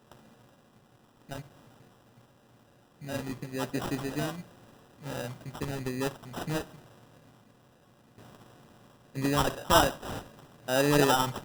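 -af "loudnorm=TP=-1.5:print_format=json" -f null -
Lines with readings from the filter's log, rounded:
"input_i" : "-28.6",
"input_tp" : "-8.8",
"input_lra" : "11.9",
"input_thresh" : "-41.4",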